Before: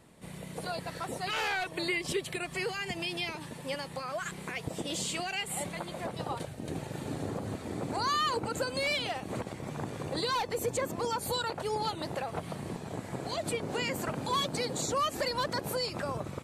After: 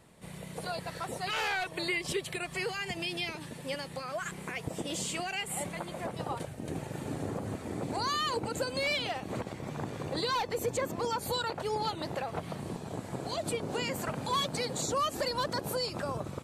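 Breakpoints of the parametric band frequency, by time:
parametric band −4 dB 0.63 octaves
280 Hz
from 0:02.97 970 Hz
from 0:04.15 4,000 Hz
from 0:07.82 1,300 Hz
from 0:08.73 9,600 Hz
from 0:12.60 2,000 Hz
from 0:13.92 330 Hz
from 0:14.83 2,100 Hz

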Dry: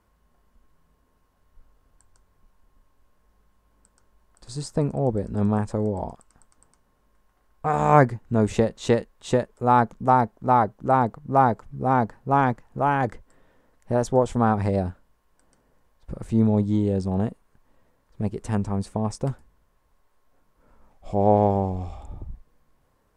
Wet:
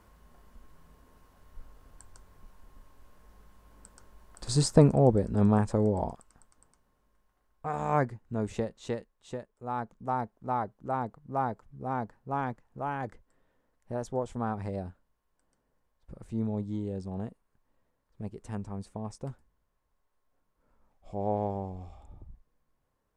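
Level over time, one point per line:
0:04.61 +7 dB
0:05.27 −1 dB
0:06.04 −1 dB
0:07.86 −11 dB
0:08.62 −11 dB
0:09.50 −18 dB
0:10.22 −12 dB

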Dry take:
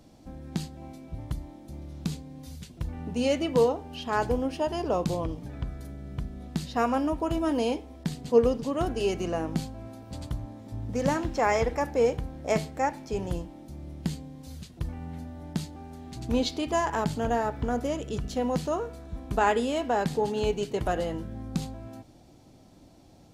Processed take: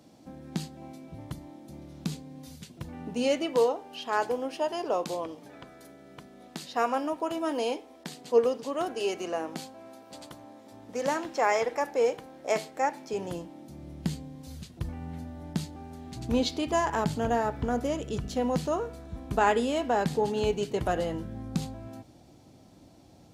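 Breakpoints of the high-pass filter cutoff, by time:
0:02.91 140 Hz
0:03.60 380 Hz
0:12.68 380 Hz
0:13.69 140 Hz
0:14.11 59 Hz

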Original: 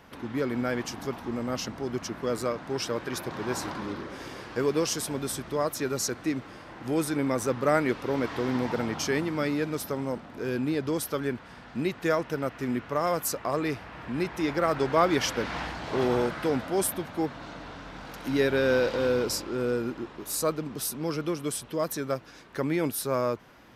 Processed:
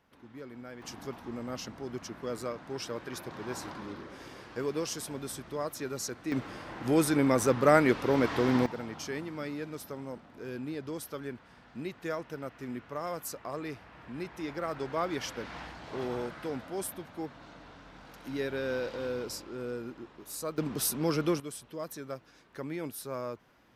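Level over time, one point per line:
−16.5 dB
from 0:00.82 −7 dB
from 0:06.32 +2 dB
from 0:08.66 −9.5 dB
from 0:20.58 +1.5 dB
from 0:21.40 −10 dB

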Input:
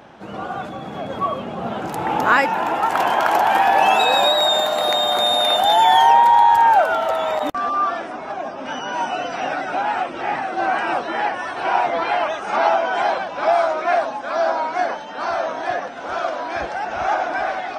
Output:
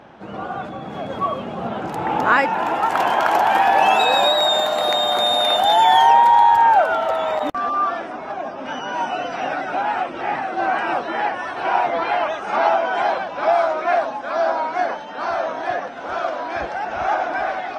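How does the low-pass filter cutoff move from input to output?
low-pass filter 6 dB per octave
3,400 Hz
from 0:00.90 8,700 Hz
from 0:01.67 3,800 Hz
from 0:02.59 8,400 Hz
from 0:06.50 4,400 Hz

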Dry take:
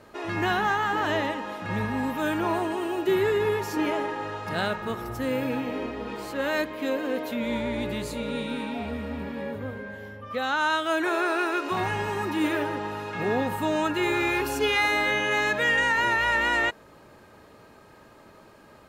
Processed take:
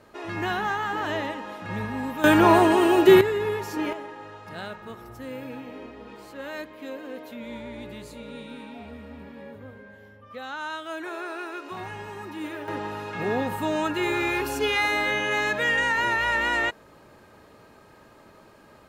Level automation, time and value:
−2.5 dB
from 0:02.24 +10 dB
from 0:03.21 −2 dB
from 0:03.93 −9 dB
from 0:12.68 −0.5 dB

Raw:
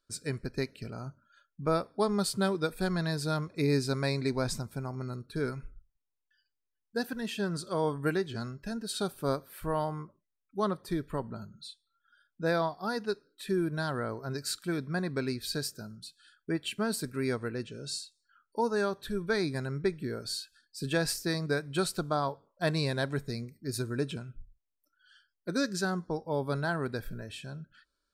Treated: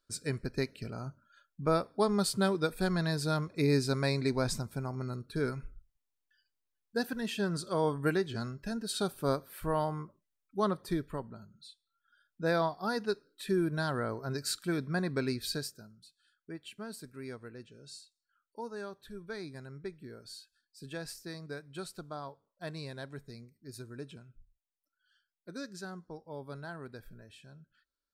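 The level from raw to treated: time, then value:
0:10.93 0 dB
0:11.42 −8.5 dB
0:12.64 0 dB
0:15.48 0 dB
0:15.94 −12 dB

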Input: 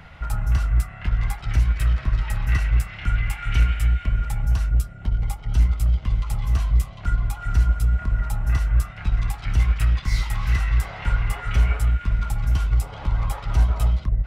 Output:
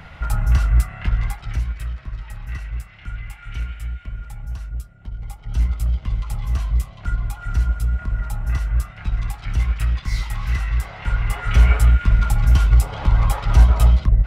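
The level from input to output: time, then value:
0:00.99 +4 dB
0:01.96 −9 dB
0:05.16 −9 dB
0:05.64 −1 dB
0:11.01 −1 dB
0:11.70 +6.5 dB

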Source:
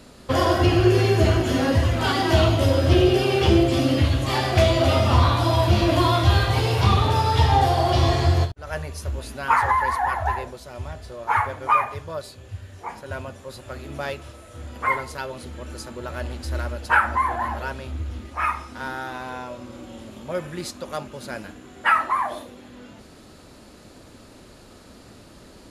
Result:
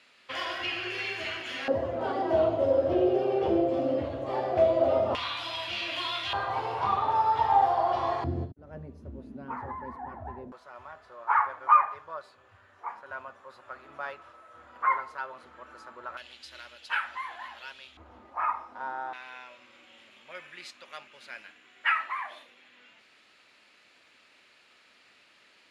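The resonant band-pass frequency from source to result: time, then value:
resonant band-pass, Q 2.2
2,400 Hz
from 0:01.68 560 Hz
from 0:05.15 2,700 Hz
from 0:06.33 940 Hz
from 0:08.24 240 Hz
from 0:10.52 1,200 Hz
from 0:16.17 3,200 Hz
from 0:17.97 880 Hz
from 0:19.13 2,400 Hz

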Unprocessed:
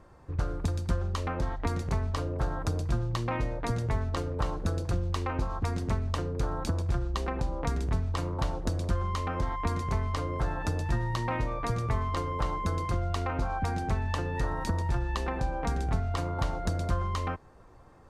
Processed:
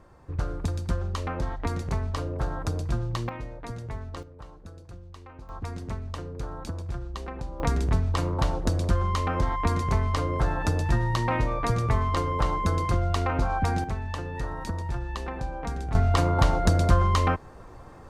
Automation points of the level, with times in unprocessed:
+1 dB
from 0:03.29 −6.5 dB
from 0:04.23 −15 dB
from 0:05.49 −4.5 dB
from 0:07.60 +5 dB
from 0:13.84 −2 dB
from 0:15.95 +9 dB

